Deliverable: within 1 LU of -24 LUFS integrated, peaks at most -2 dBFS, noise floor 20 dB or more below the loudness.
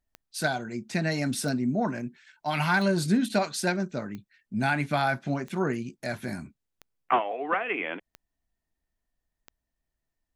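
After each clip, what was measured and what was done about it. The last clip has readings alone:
clicks 8; loudness -28.5 LUFS; peak -11.5 dBFS; loudness target -24.0 LUFS
-> de-click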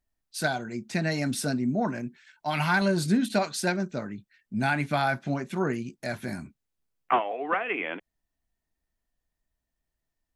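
clicks 0; loudness -28.5 LUFS; peak -11.5 dBFS; loudness target -24.0 LUFS
-> gain +4.5 dB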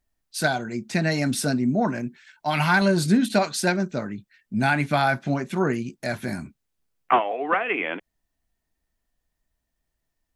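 loudness -24.0 LUFS; peak -7.0 dBFS; noise floor -79 dBFS

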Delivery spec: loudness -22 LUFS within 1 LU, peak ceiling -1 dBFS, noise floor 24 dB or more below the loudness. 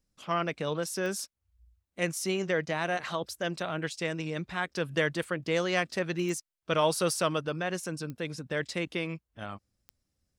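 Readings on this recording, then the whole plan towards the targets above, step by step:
clicks 4; loudness -31.5 LUFS; peak -12.5 dBFS; loudness target -22.0 LUFS
-> de-click; gain +9.5 dB

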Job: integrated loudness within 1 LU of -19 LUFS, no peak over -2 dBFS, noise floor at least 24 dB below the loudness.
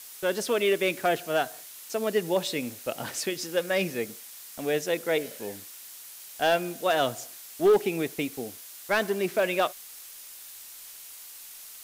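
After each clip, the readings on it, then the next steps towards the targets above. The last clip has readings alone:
clipped 0.3%; flat tops at -15.0 dBFS; noise floor -45 dBFS; noise floor target -52 dBFS; loudness -28.0 LUFS; peak -15.0 dBFS; loudness target -19.0 LUFS
-> clip repair -15 dBFS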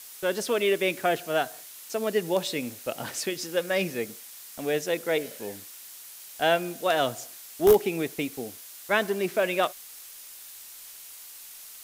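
clipped 0.0%; noise floor -45 dBFS; noise floor target -52 dBFS
-> denoiser 7 dB, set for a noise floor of -45 dBFS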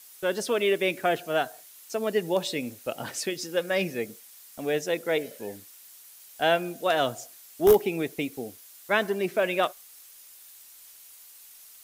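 noise floor -51 dBFS; noise floor target -52 dBFS
-> denoiser 6 dB, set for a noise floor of -51 dBFS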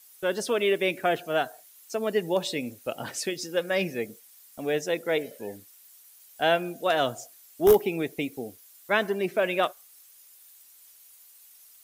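noise floor -54 dBFS; loudness -27.5 LUFS; peak -6.0 dBFS; loudness target -19.0 LUFS
-> gain +8.5 dB; limiter -2 dBFS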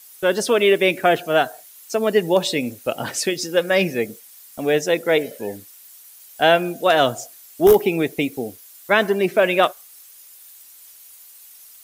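loudness -19.5 LUFS; peak -2.0 dBFS; noise floor -46 dBFS

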